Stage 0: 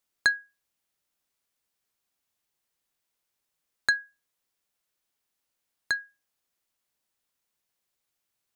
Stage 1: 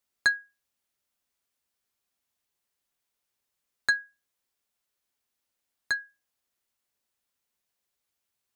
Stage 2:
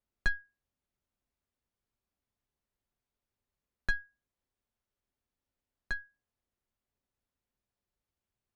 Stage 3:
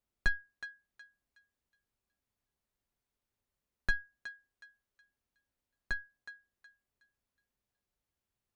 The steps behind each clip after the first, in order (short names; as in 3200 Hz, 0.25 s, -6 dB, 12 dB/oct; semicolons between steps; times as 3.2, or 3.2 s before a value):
notch comb 160 Hz
one diode to ground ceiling -18 dBFS; tilt -3.5 dB/oct; gain -4.5 dB
thinning echo 0.368 s, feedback 31%, high-pass 1100 Hz, level -10.5 dB